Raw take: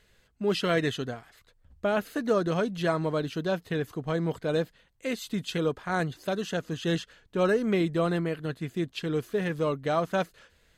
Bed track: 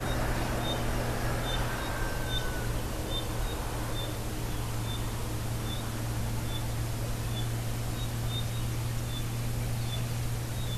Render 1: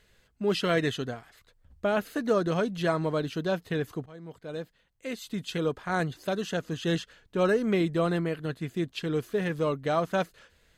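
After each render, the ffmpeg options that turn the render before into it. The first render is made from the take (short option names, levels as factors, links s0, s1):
-filter_complex "[0:a]asplit=2[s0][s1];[s0]atrim=end=4.06,asetpts=PTS-STARTPTS,afade=t=out:st=4.056:d=0.004:c=hsin:silence=0.0841395[s2];[s1]atrim=start=4.06,asetpts=PTS-STARTPTS,afade=t=in:d=1.8:silence=0.0841395[s3];[s2][s3]concat=n=2:v=0:a=1"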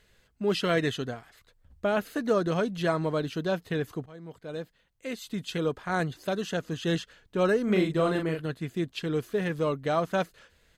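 -filter_complex "[0:a]asplit=3[s0][s1][s2];[s0]afade=t=out:st=7.67:d=0.02[s3];[s1]asplit=2[s4][s5];[s5]adelay=38,volume=0.631[s6];[s4][s6]amix=inputs=2:normalize=0,afade=t=in:st=7.67:d=0.02,afade=t=out:st=8.4:d=0.02[s7];[s2]afade=t=in:st=8.4:d=0.02[s8];[s3][s7][s8]amix=inputs=3:normalize=0"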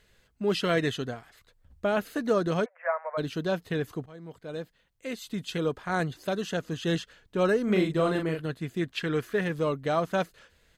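-filter_complex "[0:a]asplit=3[s0][s1][s2];[s0]afade=t=out:st=2.64:d=0.02[s3];[s1]asuperpass=centerf=1100:order=20:qfactor=0.63,afade=t=in:st=2.64:d=0.02,afade=t=out:st=3.17:d=0.02[s4];[s2]afade=t=in:st=3.17:d=0.02[s5];[s3][s4][s5]amix=inputs=3:normalize=0,asettb=1/sr,asplit=3[s6][s7][s8];[s6]atrim=end=8.814[s9];[s7]atrim=start=8.81:end=9.41,asetpts=PTS-STARTPTS,afade=t=in:d=0.004:c=qsin,afade=t=out:st=0.596:d=0.004:c=qsin,equalizer=f=1700:w=1.2:g=9[s10];[s8]atrim=start=9.406[s11];[s9][s10]acrossfade=d=0.004:c1=hsin:c2=qsin[s12];[s12][s11]acrossfade=d=0.004:c1=qsin:c2=hsin"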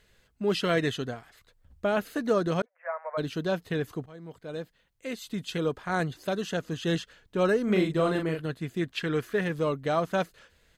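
-filter_complex "[0:a]asplit=2[s0][s1];[s0]atrim=end=2.62,asetpts=PTS-STARTPTS,afade=t=out:st=2.616:d=0.004:c=hsin[s2];[s1]atrim=start=2.62,asetpts=PTS-STARTPTS,afade=t=in:d=0.53[s3];[s2][s3]concat=n=2:v=0:a=1"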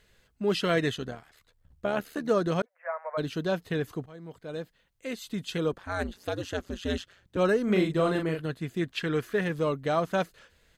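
-filter_complex "[0:a]asplit=3[s0][s1][s2];[s0]afade=t=out:st=0.94:d=0.02[s3];[s1]tremolo=f=75:d=0.621,afade=t=in:st=0.94:d=0.02,afade=t=out:st=2.28:d=0.02[s4];[s2]afade=t=in:st=2.28:d=0.02[s5];[s3][s4][s5]amix=inputs=3:normalize=0,asettb=1/sr,asplit=3[s6][s7][s8];[s6]atrim=end=5.724[s9];[s7]atrim=start=5.72:end=7.37,asetpts=PTS-STARTPTS,afade=t=in:d=0.004:c=qsin,afade=t=out:st=1.646:d=0.004:c=qsin,aeval=exprs='val(0)*sin(2*PI*92*n/s)':c=same[s10];[s8]atrim=start=7.366[s11];[s9][s10]acrossfade=d=0.004:c1=hsin:c2=qsin[s12];[s12][s11]acrossfade=d=0.004:c1=qsin:c2=hsin"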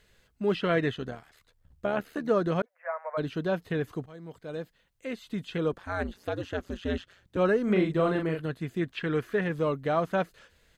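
-filter_complex "[0:a]acrossover=split=3200[s0][s1];[s1]acompressor=threshold=0.00141:ratio=4:attack=1:release=60[s2];[s0][s2]amix=inputs=2:normalize=0"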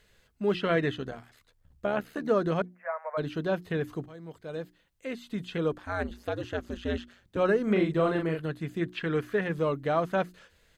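-af "bandreject=f=60:t=h:w=6,bandreject=f=120:t=h:w=6,bandreject=f=180:t=h:w=6,bandreject=f=240:t=h:w=6,bandreject=f=300:t=h:w=6,bandreject=f=360:t=h:w=6"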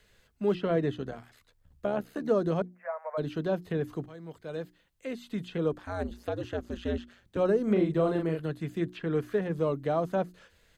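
-filter_complex "[0:a]acrossover=split=200|1000|3600[s0][s1][s2][s3];[s2]acompressor=threshold=0.00447:ratio=6[s4];[s3]alimiter=level_in=11.2:limit=0.0631:level=0:latency=1:release=338,volume=0.0891[s5];[s0][s1][s4][s5]amix=inputs=4:normalize=0"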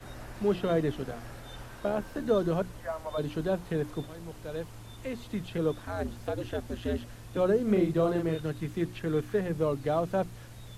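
-filter_complex "[1:a]volume=0.211[s0];[0:a][s0]amix=inputs=2:normalize=0"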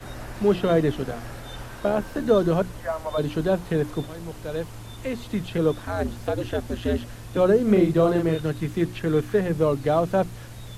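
-af "volume=2.24"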